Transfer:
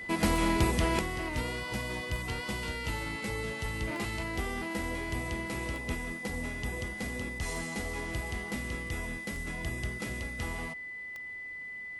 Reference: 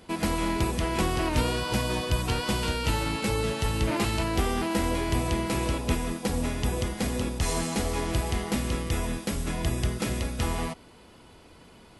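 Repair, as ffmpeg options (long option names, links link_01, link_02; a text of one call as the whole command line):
ffmpeg -i in.wav -af "adeclick=threshold=4,bandreject=frequency=2000:width=30,asetnsamples=nb_out_samples=441:pad=0,asendcmd='0.99 volume volume 9dB',volume=0dB" out.wav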